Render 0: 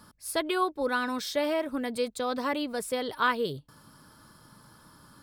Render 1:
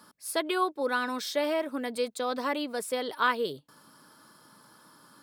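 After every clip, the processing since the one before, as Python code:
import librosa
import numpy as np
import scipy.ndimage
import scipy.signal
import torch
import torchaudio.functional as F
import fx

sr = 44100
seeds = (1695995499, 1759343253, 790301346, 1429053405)

y = scipy.signal.sosfilt(scipy.signal.butter(2, 240.0, 'highpass', fs=sr, output='sos'), x)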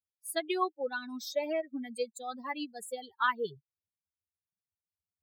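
y = fx.bin_expand(x, sr, power=3.0)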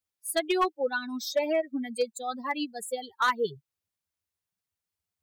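y = np.clip(x, -10.0 ** (-24.5 / 20.0), 10.0 ** (-24.5 / 20.0))
y = y * librosa.db_to_amplitude(6.0)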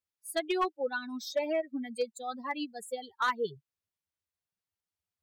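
y = fx.high_shelf(x, sr, hz=7500.0, db=-6.0)
y = y * librosa.db_to_amplitude(-4.0)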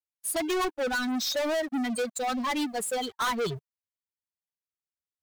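y = fx.leveller(x, sr, passes=5)
y = y * librosa.db_to_amplitude(-2.5)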